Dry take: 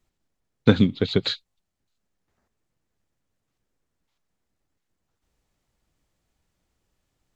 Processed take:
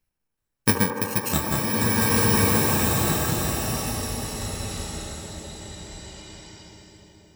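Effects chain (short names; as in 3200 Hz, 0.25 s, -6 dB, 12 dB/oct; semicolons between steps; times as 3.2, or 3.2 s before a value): FFT order left unsorted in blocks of 64 samples; bell 1800 Hz +6.5 dB 0.87 oct; band-limited delay 75 ms, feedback 82%, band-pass 700 Hz, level -4 dB; echoes that change speed 0.377 s, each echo -6 st, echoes 3, each echo -6 dB; bloom reverb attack 1.68 s, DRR -5.5 dB; gain -4.5 dB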